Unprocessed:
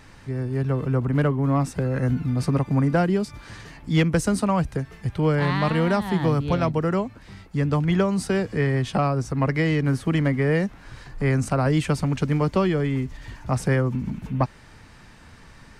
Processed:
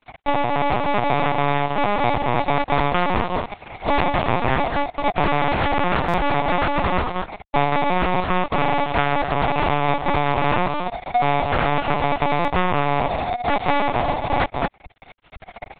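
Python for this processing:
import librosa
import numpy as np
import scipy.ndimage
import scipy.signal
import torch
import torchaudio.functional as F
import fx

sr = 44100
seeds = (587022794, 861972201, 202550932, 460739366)

p1 = fx.freq_compress(x, sr, knee_hz=1300.0, ratio=1.5)
p2 = scipy.signal.sosfilt(scipy.signal.butter(2, 2700.0, 'lowpass', fs=sr, output='sos'), p1)
p3 = fx.low_shelf(p2, sr, hz=69.0, db=8.5)
p4 = p3 + fx.echo_single(p3, sr, ms=221, db=-10.0, dry=0)
p5 = p4 * np.sin(2.0 * np.pi * 720.0 * np.arange(len(p4)) / sr)
p6 = fx.fuzz(p5, sr, gain_db=33.0, gate_db=-39.0)
p7 = fx.transient(p6, sr, attack_db=5, sustain_db=-11)
p8 = fx.lpc_vocoder(p7, sr, seeds[0], excitation='pitch_kept', order=10)
p9 = fx.buffer_glitch(p8, sr, at_s=(6.08, 12.39), block=256, repeats=9)
p10 = fx.doppler_dist(p9, sr, depth_ms=0.17)
y = p10 * 10.0 ** (-3.5 / 20.0)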